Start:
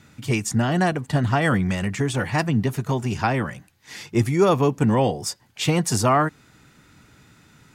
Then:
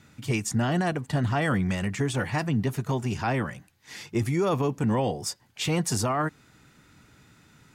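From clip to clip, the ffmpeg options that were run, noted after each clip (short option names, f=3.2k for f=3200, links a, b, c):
-af "alimiter=limit=-13.5dB:level=0:latency=1:release=15,volume=-3.5dB"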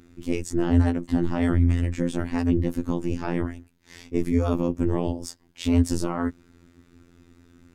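-af "equalizer=f=180:t=o:w=1.8:g=14,aeval=exprs='val(0)*sin(2*PI*99*n/s)':c=same,afftfilt=real='hypot(re,im)*cos(PI*b)':imag='0':win_size=2048:overlap=0.75"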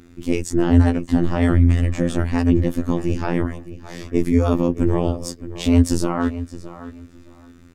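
-filter_complex "[0:a]asplit=2[a][b];[b]adelay=617,lowpass=f=3.6k:p=1,volume=-14dB,asplit=2[c][d];[d]adelay=617,lowpass=f=3.6k:p=1,volume=0.21[e];[a][c][e]amix=inputs=3:normalize=0,volume=5.5dB"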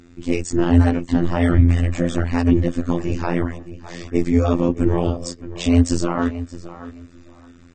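-ar 32000 -c:a aac -b:a 24k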